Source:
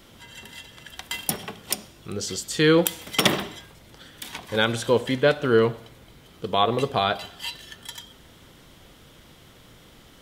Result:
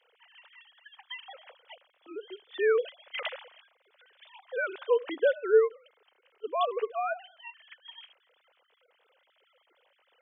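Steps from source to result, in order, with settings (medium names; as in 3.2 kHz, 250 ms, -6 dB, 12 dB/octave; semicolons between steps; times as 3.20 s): formants replaced by sine waves; high-pass 290 Hz 12 dB/octave; trim -6 dB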